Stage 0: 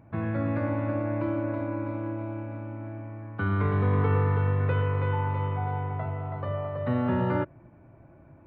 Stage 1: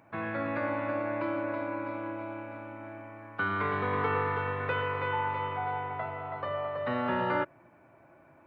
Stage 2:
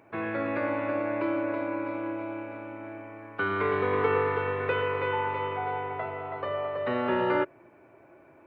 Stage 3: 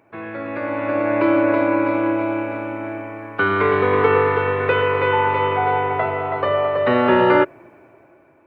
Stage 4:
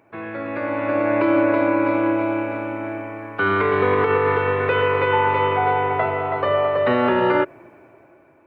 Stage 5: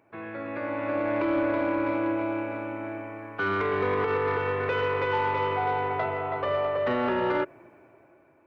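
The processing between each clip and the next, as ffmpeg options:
-af "highpass=f=1.1k:p=1,volume=6dB"
-af "equalizer=f=160:t=o:w=0.67:g=-3,equalizer=f=400:t=o:w=0.67:g=10,equalizer=f=2.5k:t=o:w=0.67:g=4"
-af "dynaudnorm=f=220:g=9:m=14dB"
-af "alimiter=limit=-9dB:level=0:latency=1:release=88"
-af "asoftclip=type=tanh:threshold=-11.5dB,volume=-6.5dB"

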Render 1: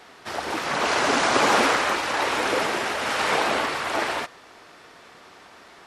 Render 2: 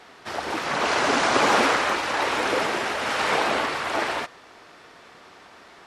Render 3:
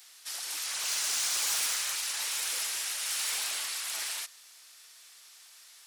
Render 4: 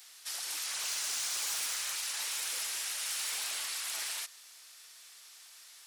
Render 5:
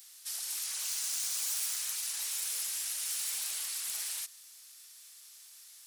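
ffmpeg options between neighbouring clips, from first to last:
-af "highshelf=f=9.1k:g=-6"
-af "aderivative,asoftclip=type=tanh:threshold=-31dB,crystalizer=i=5:c=0,volume=-5.5dB"
-af "acompressor=threshold=-35dB:ratio=2"
-af "crystalizer=i=2.5:c=0,volume=-9dB"

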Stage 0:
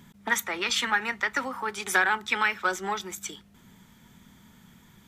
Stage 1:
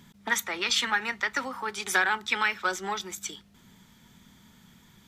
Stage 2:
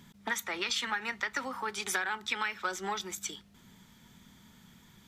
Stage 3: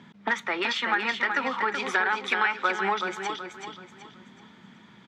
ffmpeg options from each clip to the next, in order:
-af "equalizer=f=4.5k:t=o:w=1.2:g=5,volume=-2dB"
-af "acompressor=threshold=-28dB:ratio=4,volume=-1.5dB"
-filter_complex "[0:a]asplit=2[a][b];[b]aeval=exprs='(mod(10.6*val(0)+1,2)-1)/10.6':c=same,volume=-8dB[c];[a][c]amix=inputs=2:normalize=0,highpass=190,lowpass=2.7k,aecho=1:1:377|754|1131|1508:0.501|0.18|0.065|0.0234,volume=5.5dB"

